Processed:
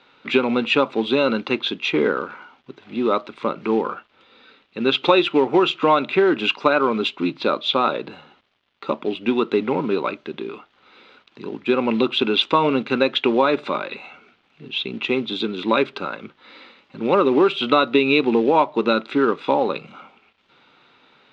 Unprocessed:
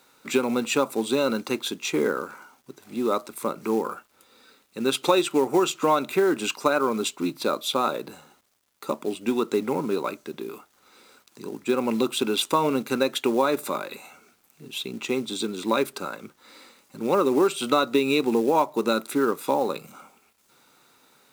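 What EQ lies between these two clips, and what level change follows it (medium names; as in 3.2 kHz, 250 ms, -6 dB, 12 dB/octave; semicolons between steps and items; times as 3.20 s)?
resonant low-pass 3.2 kHz, resonance Q 2.3; distance through air 130 m; +4.5 dB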